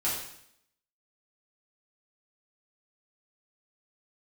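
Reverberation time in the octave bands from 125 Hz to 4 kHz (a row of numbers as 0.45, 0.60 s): 0.70, 0.80, 0.70, 0.70, 0.70, 0.70 s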